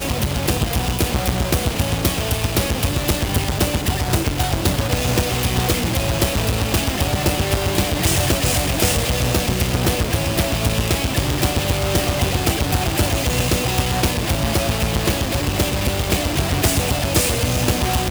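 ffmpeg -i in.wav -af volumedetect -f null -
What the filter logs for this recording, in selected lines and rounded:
mean_volume: -19.1 dB
max_volume: -4.2 dB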